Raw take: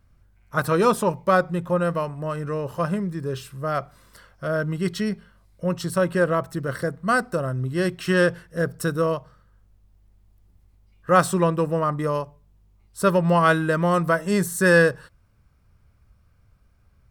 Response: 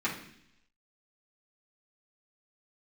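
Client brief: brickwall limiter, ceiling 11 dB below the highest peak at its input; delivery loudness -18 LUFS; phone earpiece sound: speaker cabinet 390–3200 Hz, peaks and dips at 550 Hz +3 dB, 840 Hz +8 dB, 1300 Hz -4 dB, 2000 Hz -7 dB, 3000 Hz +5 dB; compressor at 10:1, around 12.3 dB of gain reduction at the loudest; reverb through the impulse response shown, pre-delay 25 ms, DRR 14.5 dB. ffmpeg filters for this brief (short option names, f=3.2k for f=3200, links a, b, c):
-filter_complex "[0:a]acompressor=threshold=-25dB:ratio=10,alimiter=level_in=1.5dB:limit=-24dB:level=0:latency=1,volume=-1.5dB,asplit=2[a][b];[1:a]atrim=start_sample=2205,adelay=25[c];[b][c]afir=irnorm=-1:irlink=0,volume=-23dB[d];[a][d]amix=inputs=2:normalize=0,highpass=390,equalizer=f=550:t=q:w=4:g=3,equalizer=f=840:t=q:w=4:g=8,equalizer=f=1.3k:t=q:w=4:g=-4,equalizer=f=2k:t=q:w=4:g=-7,equalizer=f=3k:t=q:w=4:g=5,lowpass=f=3.2k:w=0.5412,lowpass=f=3.2k:w=1.3066,volume=19dB"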